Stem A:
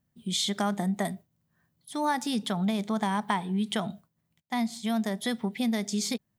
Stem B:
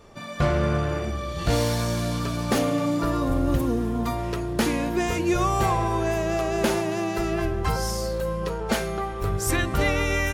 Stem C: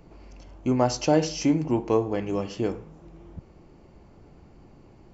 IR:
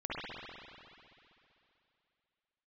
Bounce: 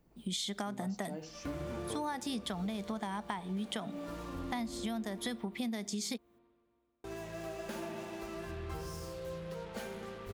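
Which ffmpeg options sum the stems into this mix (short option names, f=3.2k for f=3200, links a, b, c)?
-filter_complex "[0:a]highpass=150,volume=1dB,asplit=2[a][b];[1:a]flanger=delay=9.4:depth=5.4:regen=41:speed=0.22:shape=triangular,acrusher=bits=5:mix=0:aa=0.5,adelay=1050,volume=-17.5dB,asplit=3[c][d][e];[c]atrim=end=5.29,asetpts=PTS-STARTPTS,afade=t=out:st=5.286:d=0.004:c=hsin[f];[d]atrim=start=5.29:end=7.04,asetpts=PTS-STARTPTS,volume=0[g];[e]atrim=start=7.04,asetpts=PTS-STARTPTS,afade=t=in:d=0.004:c=hsin[h];[f][g][h]concat=n=3:v=0:a=1,asplit=2[i][j];[j]volume=-4dB[k];[2:a]volume=-18dB[l];[b]apad=whole_len=501876[m];[i][m]sidechaincompress=threshold=-37dB:ratio=8:attack=16:release=327[n];[3:a]atrim=start_sample=2205[o];[k][o]afir=irnorm=-1:irlink=0[p];[a][n][l][p]amix=inputs=4:normalize=0,acompressor=threshold=-35dB:ratio=5"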